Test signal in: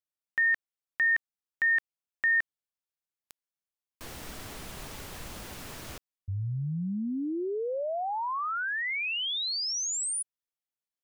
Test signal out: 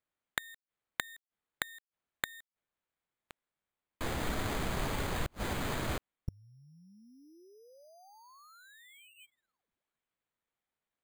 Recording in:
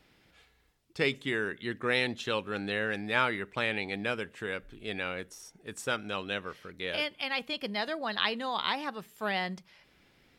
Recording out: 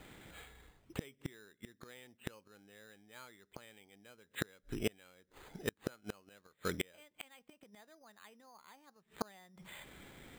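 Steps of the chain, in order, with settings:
bad sample-rate conversion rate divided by 8×, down filtered, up hold
gate with flip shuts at −31 dBFS, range −36 dB
level +9.5 dB

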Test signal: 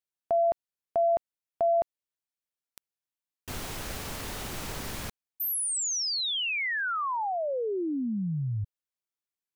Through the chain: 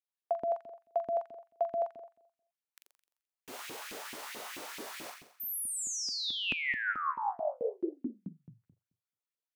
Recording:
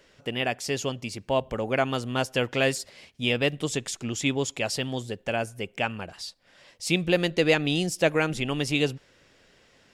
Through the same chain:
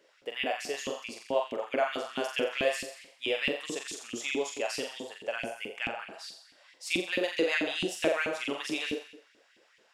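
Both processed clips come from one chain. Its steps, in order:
flutter between parallel walls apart 7.4 metres, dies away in 0.7 s
auto-filter high-pass saw up 4.6 Hz 240–2,700 Hz
level −9 dB

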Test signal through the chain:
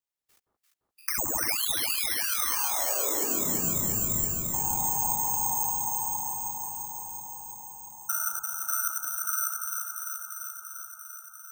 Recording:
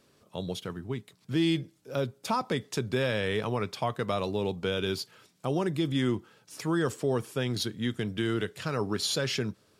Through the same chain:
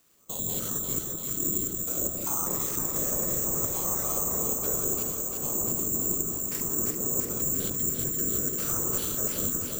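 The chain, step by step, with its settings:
spectrum averaged block by block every 100 ms
random phases in short frames
treble cut that deepens with the level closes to 890 Hz, closed at −27 dBFS
parametric band 1,200 Hz +6.5 dB 0.4 octaves
noise gate −52 dBFS, range −11 dB
reversed playback
downward compressor 6 to 1, threshold −38 dBFS
reversed playback
bass and treble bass 0 dB, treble +7 dB
bad sample-rate conversion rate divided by 6×, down none, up zero stuff
on a send: delay that swaps between a low-pass and a high-pass 172 ms, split 1,200 Hz, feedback 86%, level −3 dB
on the sum: level +2.5 dB

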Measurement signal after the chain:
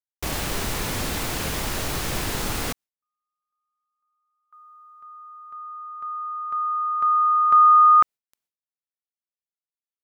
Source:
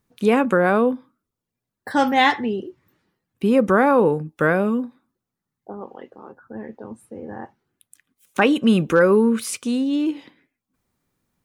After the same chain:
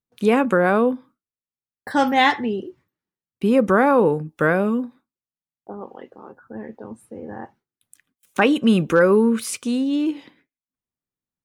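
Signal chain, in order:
noise gate with hold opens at −48 dBFS

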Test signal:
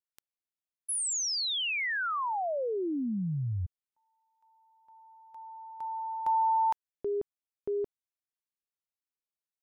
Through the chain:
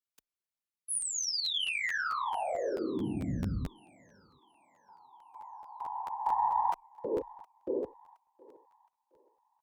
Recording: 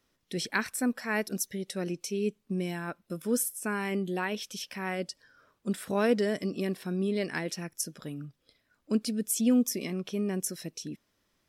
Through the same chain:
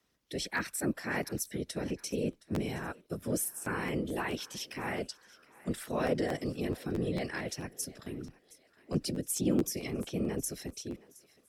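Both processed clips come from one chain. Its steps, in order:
in parallel at +2 dB: brickwall limiter −24 dBFS
on the sum: random phases in short frames
harmonic generator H 4 −38 dB, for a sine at −8 dBFS
frequency shifter +16 Hz
on a send: feedback echo with a high-pass in the loop 718 ms, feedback 44%, high-pass 510 Hz, level −20 dB
on the sum: regular buffer underruns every 0.22 s, samples 512, repeat, from 0:00.56
level −9 dB

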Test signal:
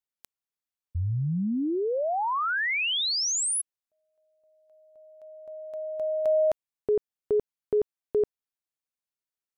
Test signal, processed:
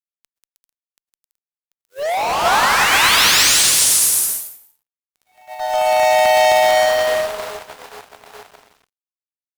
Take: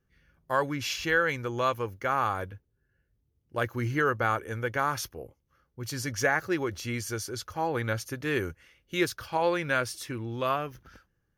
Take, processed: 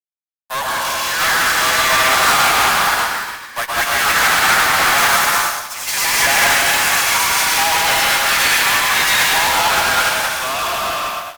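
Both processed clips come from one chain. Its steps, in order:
spectral envelope flattened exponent 0.6
Butterworth high-pass 650 Hz 48 dB per octave
bouncing-ball delay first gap 190 ms, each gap 0.65×, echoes 5
dense smooth reverb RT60 1.5 s, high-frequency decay 0.9×, pre-delay 105 ms, DRR −3.5 dB
fuzz pedal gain 38 dB, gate −45 dBFS
delay with pitch and tempo change per echo 771 ms, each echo +3 semitones, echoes 2
expander for the loud parts 2.5 to 1, over −25 dBFS

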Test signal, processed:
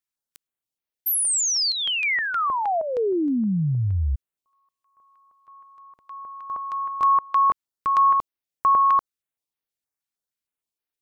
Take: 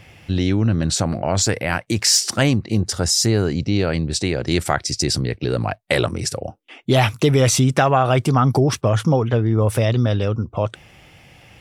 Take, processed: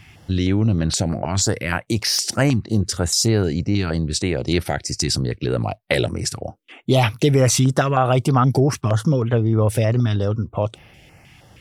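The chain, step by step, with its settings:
notch on a step sequencer 6.4 Hz 530–7,500 Hz

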